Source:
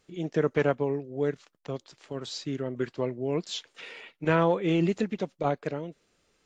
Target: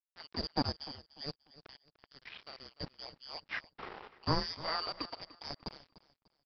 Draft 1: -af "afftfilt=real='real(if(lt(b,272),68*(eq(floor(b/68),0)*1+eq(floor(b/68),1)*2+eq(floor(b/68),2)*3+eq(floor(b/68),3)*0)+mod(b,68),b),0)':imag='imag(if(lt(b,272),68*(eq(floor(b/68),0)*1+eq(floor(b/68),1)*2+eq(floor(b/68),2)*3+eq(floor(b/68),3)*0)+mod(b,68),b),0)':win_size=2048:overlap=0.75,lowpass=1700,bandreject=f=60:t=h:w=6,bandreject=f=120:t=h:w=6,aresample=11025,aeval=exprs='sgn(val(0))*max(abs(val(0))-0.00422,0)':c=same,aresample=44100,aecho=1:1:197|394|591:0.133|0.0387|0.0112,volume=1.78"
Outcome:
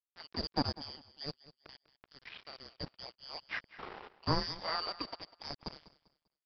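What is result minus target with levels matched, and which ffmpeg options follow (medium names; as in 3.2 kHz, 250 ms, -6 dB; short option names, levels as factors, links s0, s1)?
echo 99 ms early
-af "afftfilt=real='real(if(lt(b,272),68*(eq(floor(b/68),0)*1+eq(floor(b/68),1)*2+eq(floor(b/68),2)*3+eq(floor(b/68),3)*0)+mod(b,68),b),0)':imag='imag(if(lt(b,272),68*(eq(floor(b/68),0)*1+eq(floor(b/68),1)*2+eq(floor(b/68),2)*3+eq(floor(b/68),3)*0)+mod(b,68),b),0)':win_size=2048:overlap=0.75,lowpass=1700,bandreject=f=60:t=h:w=6,bandreject=f=120:t=h:w=6,aresample=11025,aeval=exprs='sgn(val(0))*max(abs(val(0))-0.00422,0)':c=same,aresample=44100,aecho=1:1:296|592|888:0.133|0.0387|0.0112,volume=1.78"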